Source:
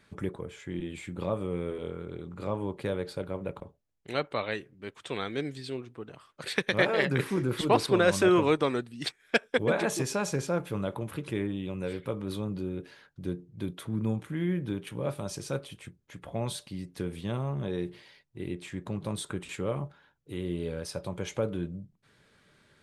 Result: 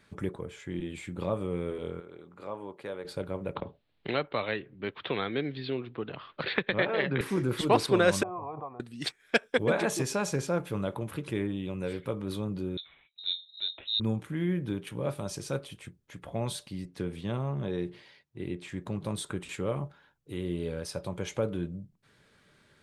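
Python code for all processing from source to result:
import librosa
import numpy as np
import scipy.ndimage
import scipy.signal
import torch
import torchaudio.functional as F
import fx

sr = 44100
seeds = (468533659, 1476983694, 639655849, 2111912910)

y = fx.chain(x, sr, fx.highpass(hz=770.0, slope=6),
    fx.high_shelf(hz=2400.0, db=-9.5), at=(2.0, 3.05))
y = fx.chain(y, sr, fx.steep_lowpass(hz=4100.0, slope=48),
    fx.band_squash(depth_pct=70), at=(3.55, 7.21))
y = fx.chain(y, sr, fx.formant_cascade(vowel='a'),
    fx.peak_eq(hz=100.0, db=14.0, octaves=1.6),
    fx.pre_swell(db_per_s=33.0), at=(8.23, 8.8))
y = fx.chain(y, sr, fx.air_absorb(metres=170.0),
    fx.freq_invert(carrier_hz=3900),
    fx.band_widen(depth_pct=40), at=(12.77, 14.0))
y = fx.chain(y, sr, fx.highpass(hz=59.0, slope=12),
    fx.high_shelf(hz=9700.0, db=-11.5), at=(16.85, 18.69))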